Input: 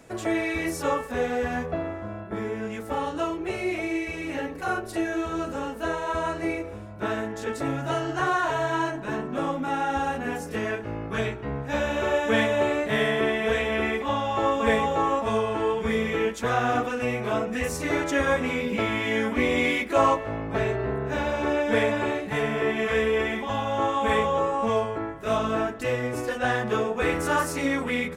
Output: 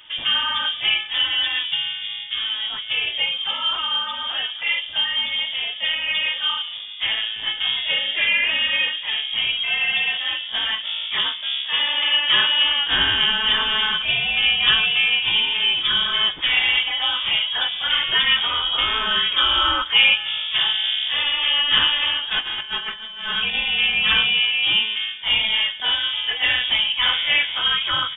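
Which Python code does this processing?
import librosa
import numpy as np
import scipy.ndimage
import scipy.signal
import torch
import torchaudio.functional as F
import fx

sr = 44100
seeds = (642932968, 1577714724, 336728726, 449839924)

y = fx.freq_invert(x, sr, carrier_hz=3500)
y = fx.highpass(y, sr, hz=fx.line((11.07, 170.0), (12.64, 450.0)), slope=6, at=(11.07, 12.64), fade=0.02)
y = fx.over_compress(y, sr, threshold_db=-30.0, ratio=-0.5, at=(22.39, 23.53), fade=0.02)
y = F.gain(torch.from_numpy(y), 5.0).numpy()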